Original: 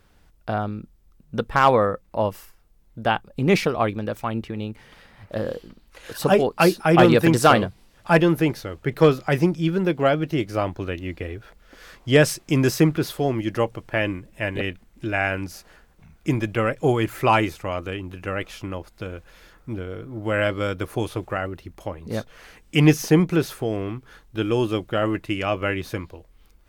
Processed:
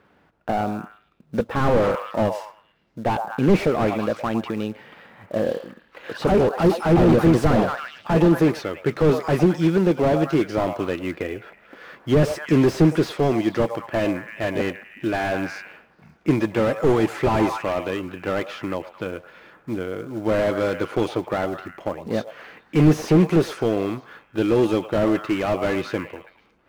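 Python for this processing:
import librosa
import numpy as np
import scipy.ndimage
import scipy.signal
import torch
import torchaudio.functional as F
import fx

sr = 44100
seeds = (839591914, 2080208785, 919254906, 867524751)

p1 = scipy.signal.sosfilt(scipy.signal.butter(2, 180.0, 'highpass', fs=sr, output='sos'), x)
p2 = fx.echo_stepped(p1, sr, ms=109, hz=740.0, octaves=0.7, feedback_pct=70, wet_db=-11.5)
p3 = fx.env_lowpass(p2, sr, base_hz=2200.0, full_db=-16.0)
p4 = fx.quant_float(p3, sr, bits=2)
p5 = p3 + (p4 * librosa.db_to_amplitude(-3.0))
p6 = fx.slew_limit(p5, sr, full_power_hz=77.0)
y = p6 * librosa.db_to_amplitude(1.0)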